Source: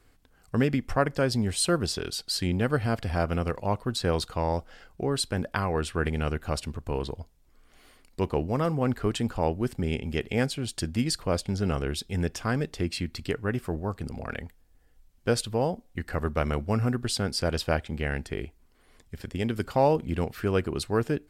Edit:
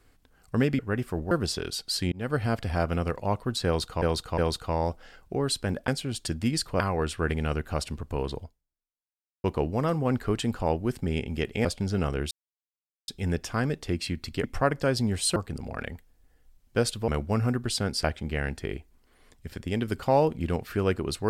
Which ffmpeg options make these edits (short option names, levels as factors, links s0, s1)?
-filter_complex "[0:a]asplit=15[s0][s1][s2][s3][s4][s5][s6][s7][s8][s9][s10][s11][s12][s13][s14];[s0]atrim=end=0.792[s15];[s1]atrim=start=13.348:end=13.872[s16];[s2]atrim=start=1.708:end=2.52,asetpts=PTS-STARTPTS,afade=t=out:st=0.808:d=0.004:c=hsin[s17];[s3]atrim=start=2.52:end=4.422,asetpts=PTS-STARTPTS,afade=t=in:d=0.36:c=qsin[s18];[s4]atrim=start=4.058:end=4.422[s19];[s5]atrim=start=4.058:end=5.562[s20];[s6]atrim=start=10.408:end=11.332[s21];[s7]atrim=start=5.558:end=8.2,asetpts=PTS-STARTPTS,afade=t=out:st=1.622:d=1.02:c=exp[s22];[s8]atrim=start=8.2:end=10.412,asetpts=PTS-STARTPTS,afade=t=in:d=0.004:c=hsin[s23];[s9]atrim=start=11.328:end=11.99,asetpts=PTS-STARTPTS,afade=t=out:st=0.658:d=0.004:c=hsin,apad=pad_dur=0.77[s24];[s10]atrim=start=11.99:end=13.352,asetpts=PTS-STARTPTS,afade=t=in:d=0.004:c=hsin[s25];[s11]atrim=start=0.788:end=1.712[s26];[s12]atrim=start=13.868:end=15.592[s27];[s13]atrim=start=16.468:end=17.432[s28];[s14]atrim=start=17.718[s29];[s15][s16]acrossfade=d=0.004:c1=hsin:c2=hsin[s30];[s17][s18]concat=n=2:v=0:a=1[s31];[s30][s31]acrossfade=d=0.004:c1=hsin:c2=hsin[s32];[s32][s19]acrossfade=d=0.004:c1=hsin:c2=hsin[s33];[s33][s20]acrossfade=d=0.004:c1=hsin:c2=hsin[s34];[s34][s21]acrossfade=d=0.004:c1=hsin:c2=hsin[s35];[s22][s23]concat=n=2:v=0:a=1[s36];[s35][s36]acrossfade=d=0.004:c1=hsin:c2=hsin[s37];[s24][s25]concat=n=2:v=0:a=1[s38];[s37][s38]acrossfade=d=0.004:c1=hsin:c2=hsin[s39];[s39][s26]acrossfade=d=0.004:c1=hsin:c2=hsin[s40];[s40][s27]acrossfade=d=0.004:c1=hsin:c2=hsin[s41];[s41][s28]acrossfade=d=0.004:c1=hsin:c2=hsin[s42];[s42][s29]acrossfade=d=0.004:c1=hsin:c2=hsin"